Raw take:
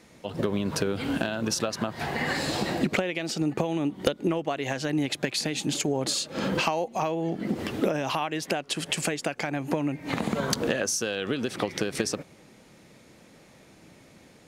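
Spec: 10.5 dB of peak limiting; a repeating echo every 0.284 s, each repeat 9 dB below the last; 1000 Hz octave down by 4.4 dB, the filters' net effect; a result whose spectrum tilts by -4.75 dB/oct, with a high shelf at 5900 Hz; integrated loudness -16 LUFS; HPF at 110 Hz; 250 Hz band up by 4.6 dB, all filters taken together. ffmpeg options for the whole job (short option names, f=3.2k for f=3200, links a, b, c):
-af "highpass=110,equalizer=f=250:t=o:g=6.5,equalizer=f=1k:t=o:g=-6.5,highshelf=f=5.9k:g=-6.5,alimiter=limit=-19dB:level=0:latency=1,aecho=1:1:284|568|852|1136:0.355|0.124|0.0435|0.0152,volume=13dB"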